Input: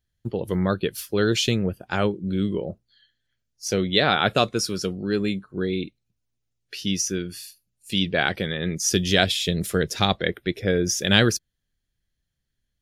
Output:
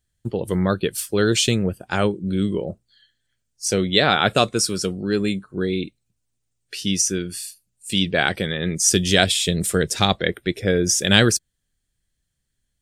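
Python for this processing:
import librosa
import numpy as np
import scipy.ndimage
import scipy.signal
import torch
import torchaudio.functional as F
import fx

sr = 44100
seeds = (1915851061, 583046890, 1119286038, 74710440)

y = fx.peak_eq(x, sr, hz=8300.0, db=13.5, octaves=0.39)
y = y * librosa.db_to_amplitude(2.5)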